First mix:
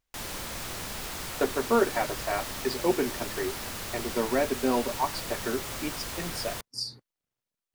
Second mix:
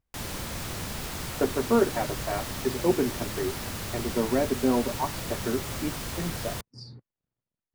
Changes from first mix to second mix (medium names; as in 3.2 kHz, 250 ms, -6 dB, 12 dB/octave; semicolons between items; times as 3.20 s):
speech: add tape spacing loss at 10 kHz 28 dB; master: add peaking EQ 110 Hz +8 dB 2.8 oct